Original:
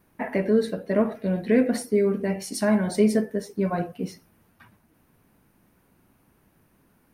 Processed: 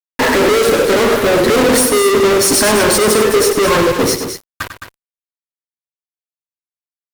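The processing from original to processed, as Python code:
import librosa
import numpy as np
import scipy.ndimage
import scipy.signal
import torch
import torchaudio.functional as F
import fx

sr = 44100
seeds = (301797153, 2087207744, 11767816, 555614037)

y = fx.fixed_phaser(x, sr, hz=720.0, stages=6)
y = fx.fuzz(y, sr, gain_db=52.0, gate_db=-53.0)
y = fx.echo_multitap(y, sr, ms=(97, 214), db=(-9.5, -9.0))
y = y * 10.0 ** (2.0 / 20.0)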